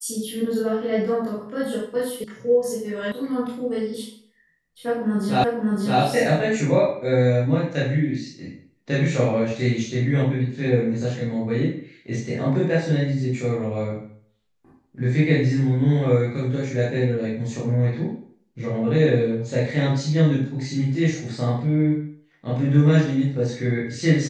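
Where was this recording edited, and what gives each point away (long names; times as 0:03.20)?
0:02.24: cut off before it has died away
0:03.12: cut off before it has died away
0:05.44: the same again, the last 0.57 s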